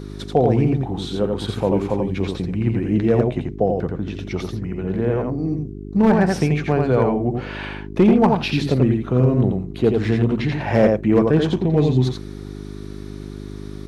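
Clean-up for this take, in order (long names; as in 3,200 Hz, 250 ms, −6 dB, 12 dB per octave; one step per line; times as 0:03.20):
clipped peaks rebuilt −7 dBFS
hum removal 50.6 Hz, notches 8
echo removal 86 ms −3.5 dB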